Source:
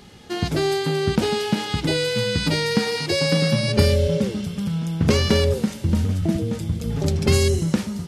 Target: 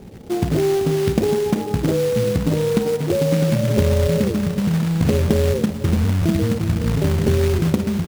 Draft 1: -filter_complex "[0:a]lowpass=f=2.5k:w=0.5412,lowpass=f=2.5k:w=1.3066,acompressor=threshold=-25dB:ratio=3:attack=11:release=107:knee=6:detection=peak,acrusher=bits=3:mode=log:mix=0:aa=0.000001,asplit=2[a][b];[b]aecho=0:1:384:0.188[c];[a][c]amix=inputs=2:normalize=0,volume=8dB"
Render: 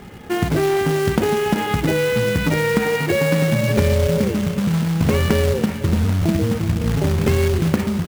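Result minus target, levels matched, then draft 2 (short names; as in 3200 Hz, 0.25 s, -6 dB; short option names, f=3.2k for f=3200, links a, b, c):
2000 Hz band +8.0 dB
-filter_complex "[0:a]lowpass=f=670:w=0.5412,lowpass=f=670:w=1.3066,acompressor=threshold=-25dB:ratio=3:attack=11:release=107:knee=6:detection=peak,acrusher=bits=3:mode=log:mix=0:aa=0.000001,asplit=2[a][b];[b]aecho=0:1:384:0.188[c];[a][c]amix=inputs=2:normalize=0,volume=8dB"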